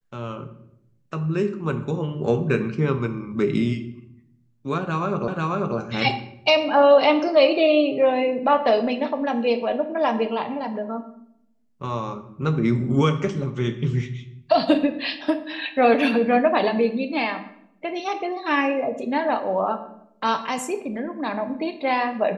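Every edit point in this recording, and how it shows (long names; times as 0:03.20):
0:05.28: the same again, the last 0.49 s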